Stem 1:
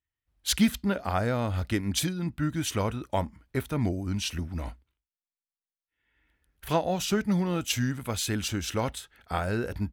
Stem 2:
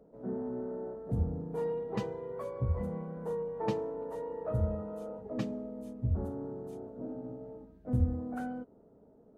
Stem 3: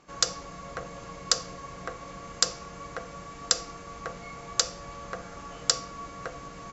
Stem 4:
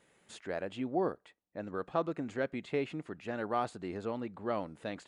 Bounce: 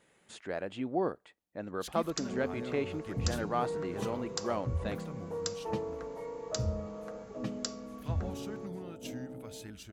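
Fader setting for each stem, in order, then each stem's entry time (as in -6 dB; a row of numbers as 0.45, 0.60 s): -18.5, -2.5, -14.0, +0.5 dB; 1.35, 2.05, 1.95, 0.00 s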